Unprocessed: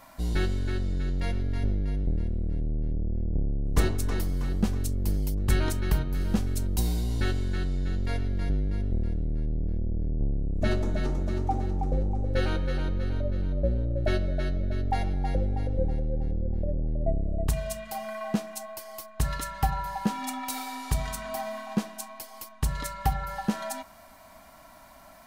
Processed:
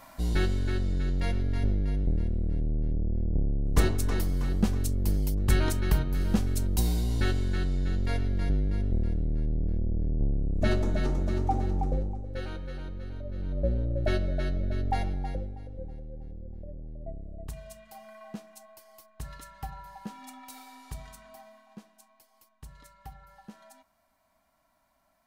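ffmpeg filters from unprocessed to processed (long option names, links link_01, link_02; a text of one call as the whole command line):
ffmpeg -i in.wav -af "volume=9dB,afade=type=out:start_time=11.8:duration=0.43:silence=0.316228,afade=type=in:start_time=13.25:duration=0.44:silence=0.375837,afade=type=out:start_time=14.97:duration=0.6:silence=0.251189,afade=type=out:start_time=20.93:duration=0.68:silence=0.446684" out.wav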